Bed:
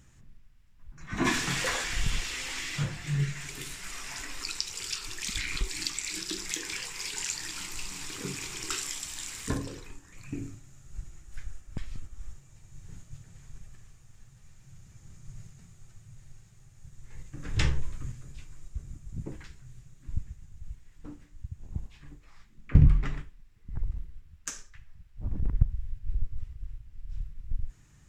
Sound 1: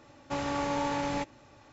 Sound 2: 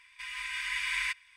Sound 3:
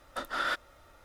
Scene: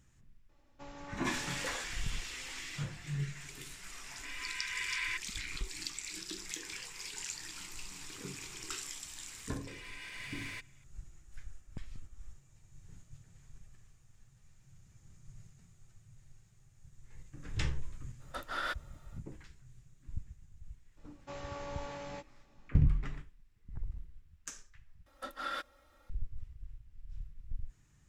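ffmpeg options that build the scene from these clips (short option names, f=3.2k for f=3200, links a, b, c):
-filter_complex "[1:a]asplit=2[a][b];[2:a]asplit=2[c][d];[3:a]asplit=2[e][f];[0:a]volume=-8dB[g];[c]equalizer=f=13k:w=0.5:g=-12[h];[d]aeval=exprs='(tanh(39.8*val(0)+0.55)-tanh(0.55))/39.8':c=same[i];[b]asplit=2[j][k];[k]adelay=16,volume=-5dB[l];[j][l]amix=inputs=2:normalize=0[m];[f]aecho=1:1:3.7:0.73[n];[g]asplit=2[o][p];[o]atrim=end=25.064[q];[n]atrim=end=1.04,asetpts=PTS-STARTPTS,volume=-9.5dB[r];[p]atrim=start=26.096[s];[a]atrim=end=1.72,asetpts=PTS-STARTPTS,volume=-17.5dB,afade=t=in:d=0.004:c=hsin,afade=t=out:st=1.716:d=0.004:c=hsin,adelay=490[t];[h]atrim=end=1.36,asetpts=PTS-STARTPTS,volume=-4dB,afade=t=in:d=0.004:c=hsin,afade=t=out:st=1.356:d=0.004:c=hsin,adelay=178605S[u];[i]atrim=end=1.36,asetpts=PTS-STARTPTS,volume=-8dB,afade=t=in:d=0.004:c=hsin,afade=t=out:st=1.356:d=0.004:c=hsin,adelay=9480[v];[e]atrim=end=1.04,asetpts=PTS-STARTPTS,volume=-5.5dB,afade=t=in:d=0.05,afade=t=out:st=0.99:d=0.05,adelay=18180[w];[m]atrim=end=1.72,asetpts=PTS-STARTPTS,volume=-13dB,afade=t=in:d=0.004:c=hsin,afade=t=out:st=1.716:d=0.004:c=hsin,adelay=20970[x];[q][r]acrossfade=d=0.004:c1=hsin:c2=hsin[y];[y][s]acrossfade=d=0.004:c1=hsin:c2=hsin[z];[z][t][u][v][w][x]amix=inputs=6:normalize=0"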